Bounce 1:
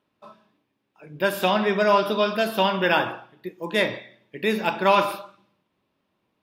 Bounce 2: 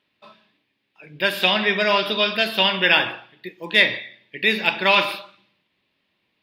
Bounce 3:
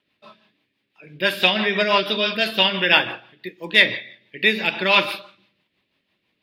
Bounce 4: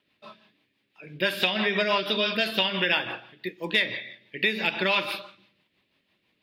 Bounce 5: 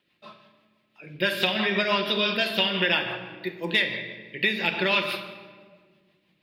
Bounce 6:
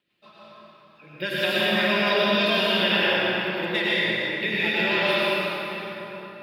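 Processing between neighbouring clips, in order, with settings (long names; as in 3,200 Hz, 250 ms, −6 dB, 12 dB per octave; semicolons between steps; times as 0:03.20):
flat-topped bell 2,900 Hz +12 dB; level −2 dB
rotating-speaker cabinet horn 6 Hz; level +2.5 dB
downward compressor 5 to 1, threshold −21 dBFS, peak gain reduction 11.5 dB
rectangular room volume 2,100 cubic metres, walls mixed, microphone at 0.89 metres
dense smooth reverb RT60 4.2 s, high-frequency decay 0.6×, pre-delay 85 ms, DRR −8.5 dB; level −5.5 dB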